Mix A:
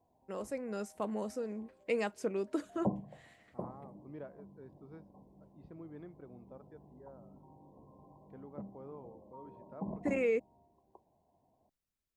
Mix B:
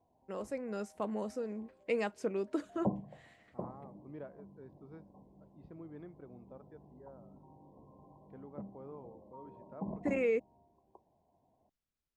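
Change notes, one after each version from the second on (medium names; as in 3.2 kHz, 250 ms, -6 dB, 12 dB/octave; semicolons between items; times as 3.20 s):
master: add treble shelf 9.1 kHz -10 dB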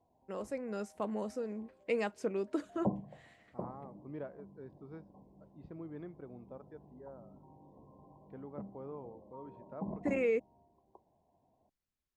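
second voice +3.5 dB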